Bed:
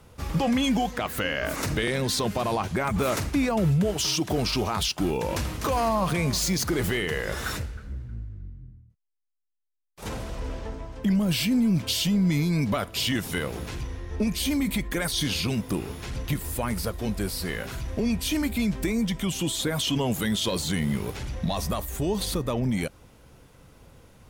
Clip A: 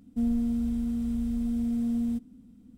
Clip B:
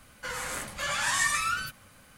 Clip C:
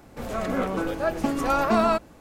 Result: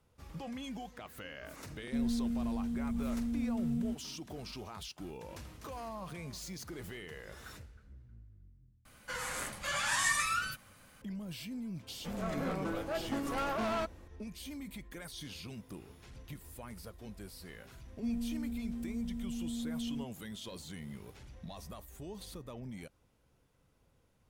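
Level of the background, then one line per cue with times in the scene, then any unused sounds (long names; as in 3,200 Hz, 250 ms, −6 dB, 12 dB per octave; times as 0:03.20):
bed −19 dB
0:01.76: mix in A −6.5 dB
0:08.85: overwrite with B −4 dB
0:11.88: mix in C −9.5 dB + hard clipping −21.5 dBFS
0:17.86: mix in A −10.5 dB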